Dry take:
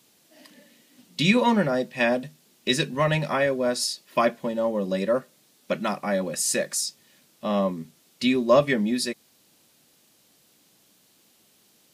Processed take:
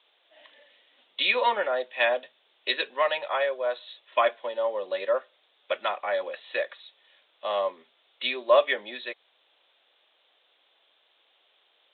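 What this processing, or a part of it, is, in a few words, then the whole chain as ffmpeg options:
musical greeting card: -filter_complex "[0:a]aresample=8000,aresample=44100,highpass=frequency=510:width=0.5412,highpass=frequency=510:width=1.3066,equalizer=frequency=3500:width_type=o:width=0.29:gain=6,asettb=1/sr,asplit=3[link_01][link_02][link_03];[link_01]atrim=end=3.074[link_04];[link_02]atrim=start=3.07:end=3.87,asetpts=PTS-STARTPTS,afade=type=in:duration=0.004:curve=qsin,afade=type=out:start_time=0.796:duration=0.004:curve=qsin,equalizer=frequency=250:width_type=o:width=1:gain=-7,equalizer=frequency=2000:width_type=o:width=1:gain=-4,equalizer=frequency=8000:width_type=o:width=1:gain=-5[link_05];[link_03]atrim=start=3.866[link_06];[link_04][link_05]acrossfade=duration=0.004:curve1=hsin:curve2=qsin[link_07];[link_07][link_06]acrossfade=duration=0.004:curve1=qsin:curve2=hsin"

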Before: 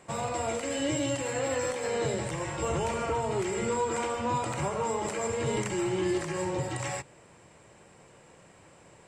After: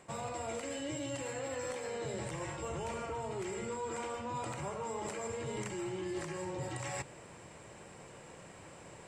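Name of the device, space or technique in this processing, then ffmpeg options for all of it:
compression on the reversed sound: -af "areverse,acompressor=threshold=-41dB:ratio=5,areverse,volume=3dB"

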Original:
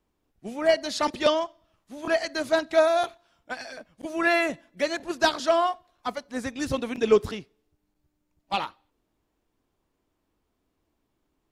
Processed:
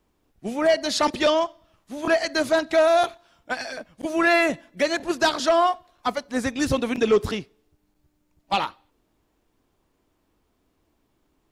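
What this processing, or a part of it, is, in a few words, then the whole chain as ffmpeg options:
soft clipper into limiter: -af "asoftclip=type=tanh:threshold=-13.5dB,alimiter=limit=-18dB:level=0:latency=1:release=188,volume=6.5dB"

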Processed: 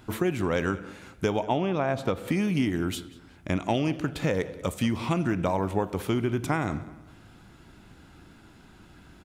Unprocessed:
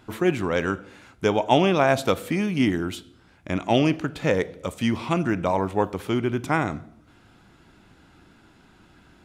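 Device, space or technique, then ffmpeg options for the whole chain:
ASMR close-microphone chain: -filter_complex "[0:a]lowshelf=frequency=190:gain=5,acompressor=threshold=-22dB:ratio=6,highshelf=frequency=8800:gain=7,asettb=1/sr,asplit=3[link_01][link_02][link_03];[link_01]atrim=end=1.434[link_04];[link_02]atrim=start=1.43:end=2.28,asetpts=PTS-STARTPTS,afade=type=in:duration=0.004:curve=qsin,afade=type=out:start_time=0.846:duration=0.004:curve=qsin,aemphasis=mode=reproduction:type=75kf[link_05];[link_03]atrim=start=2.276[link_06];[link_04][link_05]acrossfade=duration=0.004:curve1=hsin:curve2=qsin[link_07];[link_07][link_06]acrossfade=duration=0.004:curve1=qsin:curve2=hsin,asplit=2[link_08][link_09];[link_09]adelay=188,lowpass=frequency=4900:poles=1,volume=-18.5dB,asplit=2[link_10][link_11];[link_11]adelay=188,lowpass=frequency=4900:poles=1,volume=0.39,asplit=2[link_12][link_13];[link_13]adelay=188,lowpass=frequency=4900:poles=1,volume=0.39[link_14];[link_08][link_10][link_12][link_14]amix=inputs=4:normalize=0"

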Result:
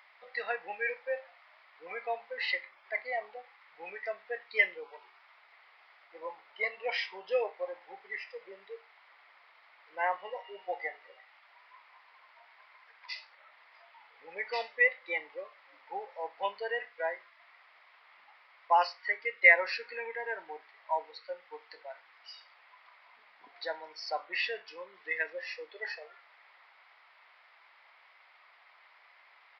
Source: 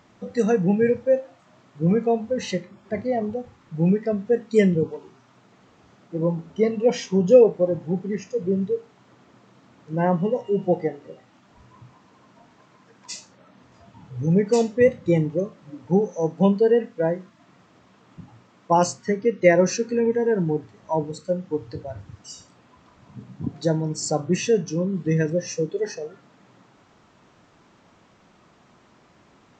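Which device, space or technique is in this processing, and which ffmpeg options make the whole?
musical greeting card: -af "aresample=11025,aresample=44100,highpass=frequency=750:width=0.5412,highpass=frequency=750:width=1.3066,equalizer=frequency=2100:width_type=o:width=0.43:gain=12,volume=-3.5dB"

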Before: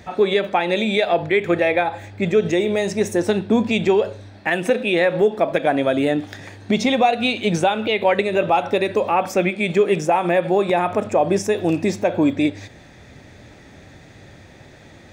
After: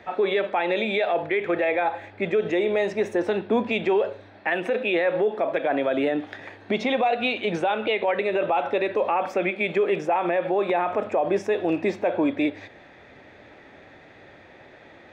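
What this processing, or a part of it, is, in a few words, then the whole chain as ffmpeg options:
DJ mixer with the lows and highs turned down: -filter_complex "[0:a]acrossover=split=300 3400:gain=0.2 1 0.0891[link_01][link_02][link_03];[link_01][link_02][link_03]amix=inputs=3:normalize=0,alimiter=limit=-14.5dB:level=0:latency=1:release=23"

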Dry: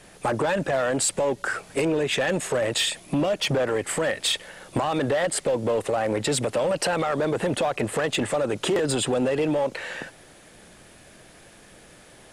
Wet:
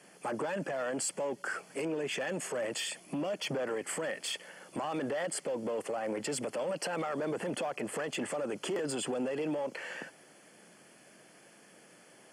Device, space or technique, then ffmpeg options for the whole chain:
PA system with an anti-feedback notch: -af "highpass=frequency=160:width=0.5412,highpass=frequency=160:width=1.3066,asuperstop=centerf=3800:order=4:qfactor=5.4,alimiter=limit=-19.5dB:level=0:latency=1:release=19,volume=-7.5dB"

